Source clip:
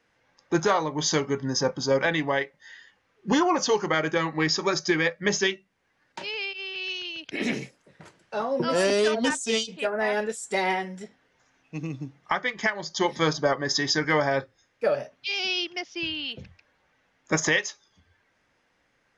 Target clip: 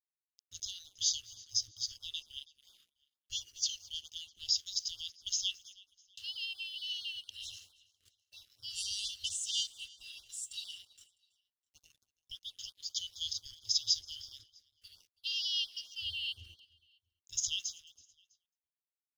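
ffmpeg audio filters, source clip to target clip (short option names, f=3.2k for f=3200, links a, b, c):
-filter_complex "[0:a]asettb=1/sr,asplit=3[a][b][c];[a]atrim=end=6.354[d];[b]atrim=start=6.35:end=7.08,asetpts=PTS-STARTPTS,afade=t=in:d=0.004:c=qsin,afade=t=out:st=0.726:d=0.004:c=qsin,aecho=1:1:6.7:0.32,atrim=end_sample=32193[e];[c]atrim=start=7.076[f];[d][e]acrossfade=d=0.004:c1=hsin:c2=qsin[g];[g][f]acrossfade=d=0.004:c1=qsin:c2=hsin,asplit=2[h][i];[i]adelay=217,lowpass=f=4.8k:p=1,volume=-18.5dB,asplit=2[j][k];[k]adelay=217,lowpass=f=4.8k:p=1,volume=0.25[l];[j][l]amix=inputs=2:normalize=0[m];[h][m]amix=inputs=2:normalize=0,afftfilt=real='re*(1-between(b*sr/4096,110,2700))':imag='im*(1-between(b*sr/4096,110,2700))':win_size=4096:overlap=0.75,aeval=exprs='sgn(val(0))*max(abs(val(0))-0.00126,0)':c=same,asplit=2[n][o];[o]aecho=0:1:327|654:0.0708|0.0255[p];[n][p]amix=inputs=2:normalize=0,afftfilt=real='re*(1-between(b*sr/1024,700*pow(2300/700,0.5+0.5*sin(2*PI*4.4*pts/sr))/1.41,700*pow(2300/700,0.5+0.5*sin(2*PI*4.4*pts/sr))*1.41))':imag='im*(1-between(b*sr/1024,700*pow(2300/700,0.5+0.5*sin(2*PI*4.4*pts/sr))/1.41,700*pow(2300/700,0.5+0.5*sin(2*PI*4.4*pts/sr))*1.41))':win_size=1024:overlap=0.75,volume=-3.5dB"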